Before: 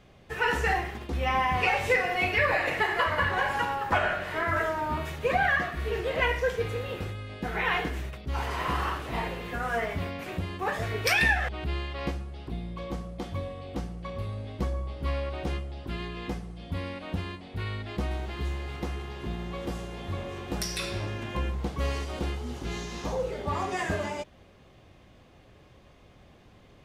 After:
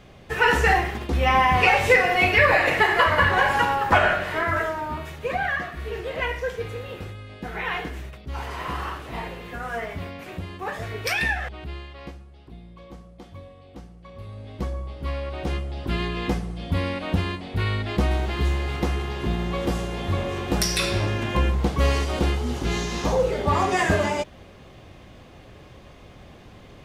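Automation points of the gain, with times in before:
4.1 s +7.5 dB
5.01 s -1 dB
11.41 s -1 dB
12.17 s -8 dB
14.03 s -8 dB
14.6 s +1 dB
15.2 s +1 dB
15.93 s +9 dB

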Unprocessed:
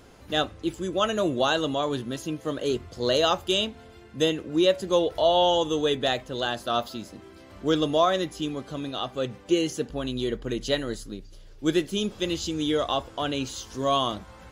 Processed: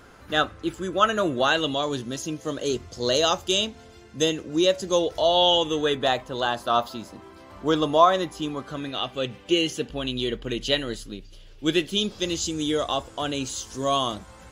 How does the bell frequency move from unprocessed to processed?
bell +9 dB 0.83 oct
1.4 s 1400 Hz
1.9 s 6100 Hz
5.22 s 6100 Hz
6.07 s 980 Hz
8.52 s 980 Hz
9.1 s 2900 Hz
11.82 s 2900 Hz
12.5 s 8100 Hz

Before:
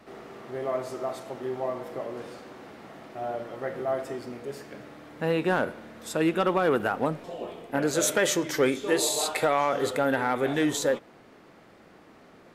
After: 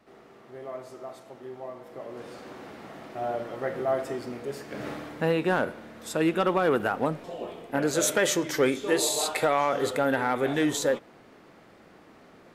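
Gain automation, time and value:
1.82 s -8.5 dB
2.49 s +2 dB
4.67 s +2 dB
4.88 s +11.5 dB
5.35 s 0 dB

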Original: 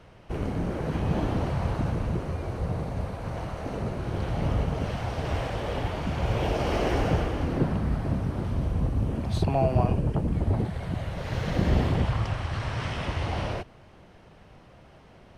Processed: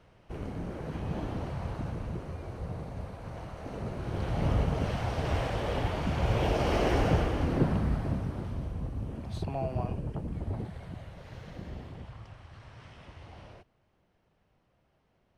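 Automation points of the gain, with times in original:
3.53 s -8 dB
4.5 s -1 dB
7.79 s -1 dB
8.78 s -9.5 dB
10.73 s -9.5 dB
11.79 s -19.5 dB

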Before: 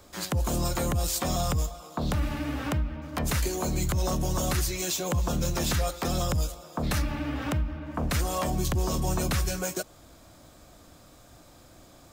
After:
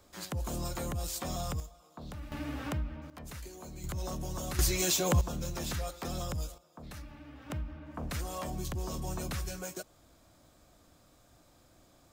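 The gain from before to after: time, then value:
-8.5 dB
from 1.6 s -16 dB
from 2.32 s -6.5 dB
from 3.1 s -17.5 dB
from 3.84 s -10 dB
from 4.59 s +1 dB
from 5.21 s -9 dB
from 6.58 s -18.5 dB
from 7.5 s -9.5 dB

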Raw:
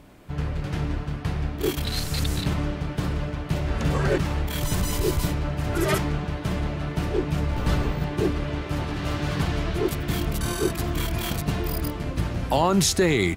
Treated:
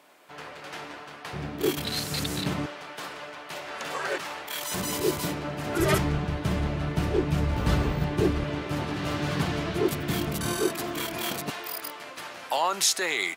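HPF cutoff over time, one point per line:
620 Hz
from 1.33 s 170 Hz
from 2.66 s 700 Hz
from 4.74 s 210 Hz
from 5.8 s 51 Hz
from 8.44 s 130 Hz
from 10.62 s 290 Hz
from 11.5 s 810 Hz

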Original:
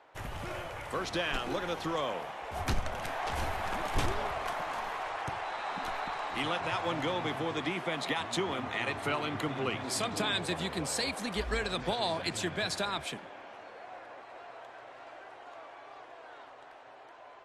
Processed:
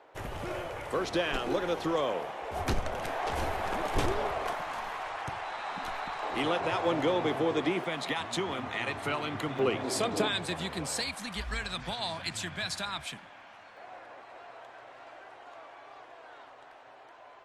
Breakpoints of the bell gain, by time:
bell 420 Hz 1.3 oct
+6.5 dB
from 4.55 s -2 dB
from 6.23 s +8.5 dB
from 7.84 s -0.5 dB
from 9.59 s +8.5 dB
from 10.28 s -2 dB
from 11.03 s -12 dB
from 13.77 s -1.5 dB

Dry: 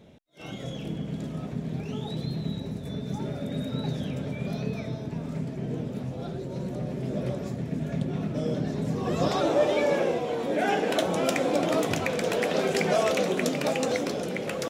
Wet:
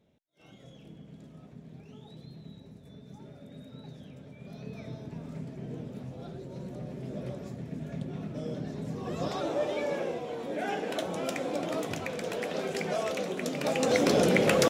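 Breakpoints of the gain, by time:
4.36 s -16 dB
4.89 s -7.5 dB
13.41 s -7.5 dB
13.82 s -0.5 dB
14.19 s +8 dB

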